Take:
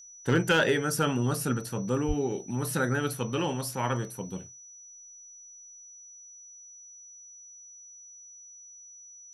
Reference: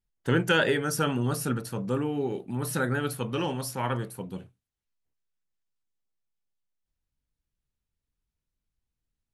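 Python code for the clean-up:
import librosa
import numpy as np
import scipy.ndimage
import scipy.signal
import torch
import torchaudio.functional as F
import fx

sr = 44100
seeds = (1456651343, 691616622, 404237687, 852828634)

y = fx.fix_declip(x, sr, threshold_db=-15.0)
y = fx.notch(y, sr, hz=5900.0, q=30.0)
y = fx.highpass(y, sr, hz=140.0, slope=24, at=(2.07, 2.19), fade=0.02)
y = fx.gain(y, sr, db=fx.steps((0.0, 0.0), (5.83, 5.5)))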